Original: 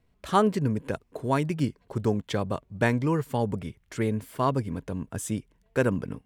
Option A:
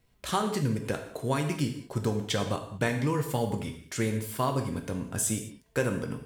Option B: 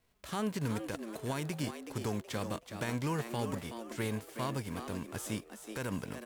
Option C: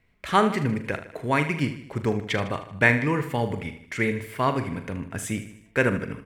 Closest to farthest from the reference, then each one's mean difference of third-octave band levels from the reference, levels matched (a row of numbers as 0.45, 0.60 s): C, A, B; 5.0, 8.0, 10.5 dB